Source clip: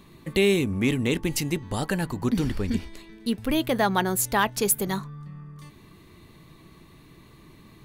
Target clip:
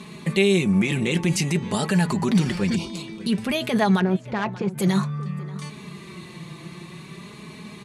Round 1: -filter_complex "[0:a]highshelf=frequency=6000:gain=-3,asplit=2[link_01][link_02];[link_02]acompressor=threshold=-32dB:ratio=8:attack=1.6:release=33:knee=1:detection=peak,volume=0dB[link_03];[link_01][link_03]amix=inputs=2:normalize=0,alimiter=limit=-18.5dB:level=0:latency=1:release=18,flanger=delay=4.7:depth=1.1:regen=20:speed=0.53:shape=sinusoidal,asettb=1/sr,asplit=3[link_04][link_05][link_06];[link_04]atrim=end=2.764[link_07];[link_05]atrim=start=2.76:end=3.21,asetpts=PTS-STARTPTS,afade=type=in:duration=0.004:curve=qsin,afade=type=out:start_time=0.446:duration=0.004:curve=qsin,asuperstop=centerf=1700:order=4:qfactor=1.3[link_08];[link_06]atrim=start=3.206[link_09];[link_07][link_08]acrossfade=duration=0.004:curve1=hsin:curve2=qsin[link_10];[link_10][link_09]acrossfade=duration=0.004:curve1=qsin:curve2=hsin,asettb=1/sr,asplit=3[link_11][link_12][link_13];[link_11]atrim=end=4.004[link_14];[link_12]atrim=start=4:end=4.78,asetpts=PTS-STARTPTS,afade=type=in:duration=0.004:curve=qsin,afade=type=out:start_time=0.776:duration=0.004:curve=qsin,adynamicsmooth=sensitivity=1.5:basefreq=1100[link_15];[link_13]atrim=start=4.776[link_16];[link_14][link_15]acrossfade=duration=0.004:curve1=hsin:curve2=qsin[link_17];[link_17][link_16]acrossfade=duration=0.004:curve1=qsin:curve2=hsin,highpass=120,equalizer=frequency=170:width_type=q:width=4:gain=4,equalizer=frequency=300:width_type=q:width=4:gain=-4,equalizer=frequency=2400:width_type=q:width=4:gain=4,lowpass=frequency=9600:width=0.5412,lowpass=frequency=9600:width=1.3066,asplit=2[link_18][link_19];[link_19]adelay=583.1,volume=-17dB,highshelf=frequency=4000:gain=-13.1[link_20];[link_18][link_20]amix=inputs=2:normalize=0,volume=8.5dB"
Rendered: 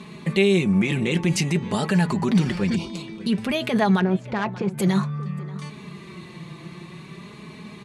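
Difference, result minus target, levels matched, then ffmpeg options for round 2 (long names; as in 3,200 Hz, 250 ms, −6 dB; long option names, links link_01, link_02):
8,000 Hz band −2.5 dB
-filter_complex "[0:a]highshelf=frequency=6000:gain=5.5,asplit=2[link_01][link_02];[link_02]acompressor=threshold=-32dB:ratio=8:attack=1.6:release=33:knee=1:detection=peak,volume=0dB[link_03];[link_01][link_03]amix=inputs=2:normalize=0,alimiter=limit=-18.5dB:level=0:latency=1:release=18,flanger=delay=4.7:depth=1.1:regen=20:speed=0.53:shape=sinusoidal,asettb=1/sr,asplit=3[link_04][link_05][link_06];[link_04]atrim=end=2.764[link_07];[link_05]atrim=start=2.76:end=3.21,asetpts=PTS-STARTPTS,afade=type=in:duration=0.004:curve=qsin,afade=type=out:start_time=0.446:duration=0.004:curve=qsin,asuperstop=centerf=1700:order=4:qfactor=1.3[link_08];[link_06]atrim=start=3.206[link_09];[link_07][link_08]acrossfade=duration=0.004:curve1=hsin:curve2=qsin[link_10];[link_10][link_09]acrossfade=duration=0.004:curve1=qsin:curve2=hsin,asettb=1/sr,asplit=3[link_11][link_12][link_13];[link_11]atrim=end=4.004[link_14];[link_12]atrim=start=4:end=4.78,asetpts=PTS-STARTPTS,afade=type=in:duration=0.004:curve=qsin,afade=type=out:start_time=0.776:duration=0.004:curve=qsin,adynamicsmooth=sensitivity=1.5:basefreq=1100[link_15];[link_13]atrim=start=4.776[link_16];[link_14][link_15]acrossfade=duration=0.004:curve1=hsin:curve2=qsin[link_17];[link_17][link_16]acrossfade=duration=0.004:curve1=qsin:curve2=hsin,highpass=120,equalizer=frequency=170:width_type=q:width=4:gain=4,equalizer=frequency=300:width_type=q:width=4:gain=-4,equalizer=frequency=2400:width_type=q:width=4:gain=4,lowpass=frequency=9600:width=0.5412,lowpass=frequency=9600:width=1.3066,asplit=2[link_18][link_19];[link_19]adelay=583.1,volume=-17dB,highshelf=frequency=4000:gain=-13.1[link_20];[link_18][link_20]amix=inputs=2:normalize=0,volume=8.5dB"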